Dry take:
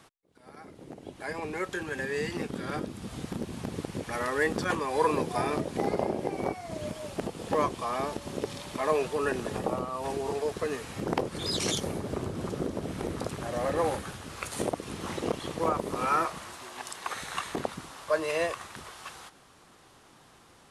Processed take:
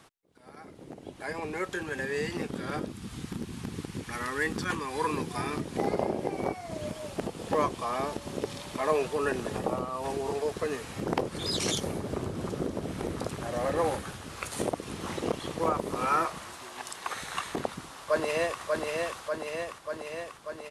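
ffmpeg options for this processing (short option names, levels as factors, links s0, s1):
-filter_complex "[0:a]asettb=1/sr,asplit=3[s0][s1][s2];[s0]atrim=end=2.924[s3];[s1]atrim=start=2.92:end=5.72,asetpts=PTS-STARTPTS,afade=t=in:d=0.004:c=qsin,afade=t=out:st=2.796:d=0.004:c=qsin,equalizer=f=600:t=o:w=0.89:g=-11.5[s4];[s2]atrim=start=5.716[s5];[s3][s4]acrossfade=d=0.004:c1=hsin:c2=qsin[s6];[s6][s5]acrossfade=d=0.004:c1=qsin:c2=hsin,asplit=2[s7][s8];[s8]afade=t=in:st=17.56:d=0.01,afade=t=out:st=18.6:d=0.01,aecho=0:1:590|1180|1770|2360|2950|3540|4130|4720|5310|5900|6490|7080:0.707946|0.495562|0.346893|0.242825|0.169978|0.118984|0.0832891|0.0583024|0.0408117|0.0285682|0.0199977|0.0139984[s9];[s7][s9]amix=inputs=2:normalize=0"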